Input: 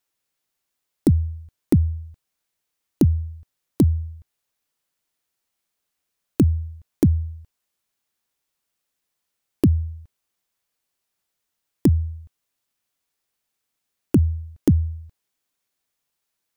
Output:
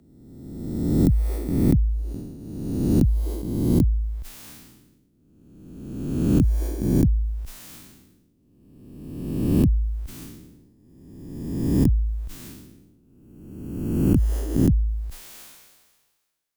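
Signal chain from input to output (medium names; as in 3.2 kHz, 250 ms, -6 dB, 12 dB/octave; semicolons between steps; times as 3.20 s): reverse spectral sustain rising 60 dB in 1.54 s; frequency shift -27 Hz; decay stretcher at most 38 dB/s; trim -7 dB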